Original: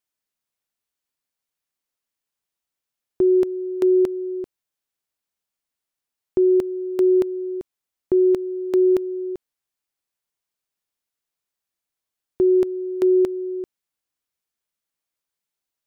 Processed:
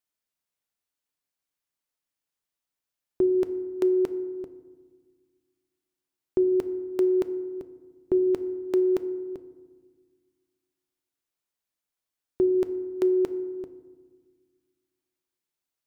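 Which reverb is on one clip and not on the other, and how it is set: FDN reverb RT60 1.5 s, low-frequency decay 1.5×, high-frequency decay 0.35×, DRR 11 dB; trim -3 dB

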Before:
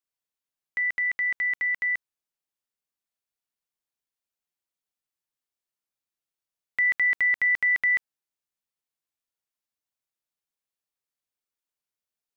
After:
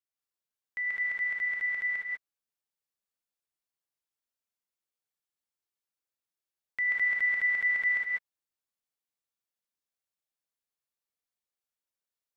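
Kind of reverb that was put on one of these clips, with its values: gated-style reverb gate 220 ms rising, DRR -3 dB; trim -8 dB

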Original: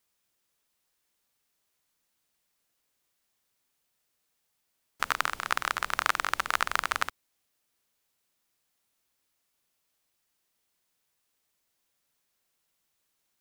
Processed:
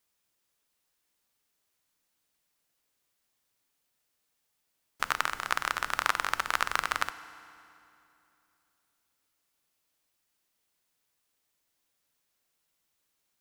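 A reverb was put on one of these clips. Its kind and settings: FDN reverb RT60 2.8 s, low-frequency decay 1.2×, high-frequency decay 0.8×, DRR 13.5 dB; trim -1 dB

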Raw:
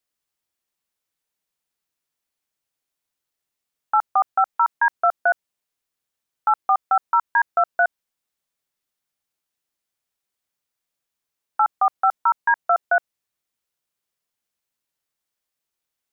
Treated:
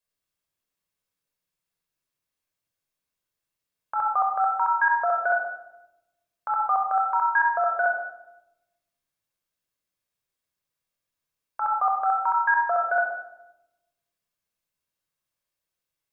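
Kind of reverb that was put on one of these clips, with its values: simulated room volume 3100 m³, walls furnished, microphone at 5.4 m; trim -6.5 dB

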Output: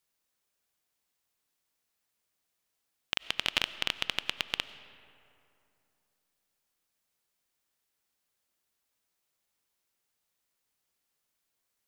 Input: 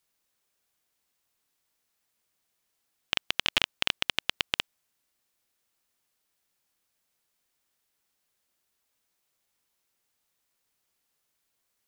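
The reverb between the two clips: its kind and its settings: algorithmic reverb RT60 2.8 s, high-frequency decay 0.5×, pre-delay 55 ms, DRR 14 dB; trim -3.5 dB

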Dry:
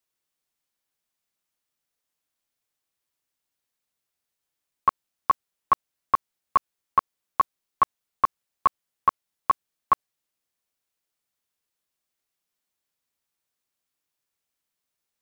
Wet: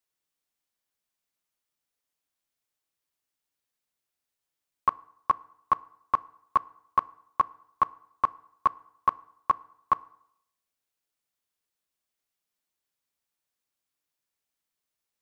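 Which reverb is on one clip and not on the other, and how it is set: FDN reverb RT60 0.74 s, low-frequency decay 0.95×, high-frequency decay 0.75×, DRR 19 dB; trim -3 dB

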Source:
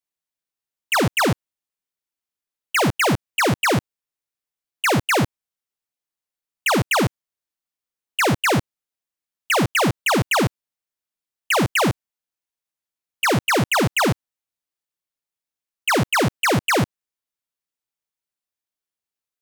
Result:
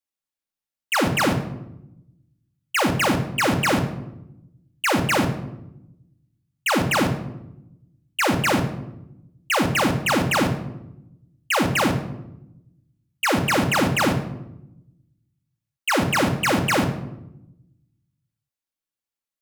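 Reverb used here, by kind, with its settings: simulated room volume 2800 m³, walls furnished, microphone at 2.3 m; trim -3.5 dB

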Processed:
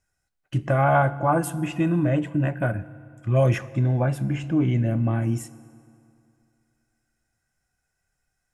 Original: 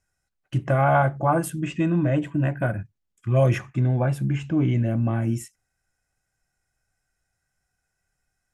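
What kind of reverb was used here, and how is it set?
FDN reverb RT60 2.6 s, high-frequency decay 0.7×, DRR 16 dB

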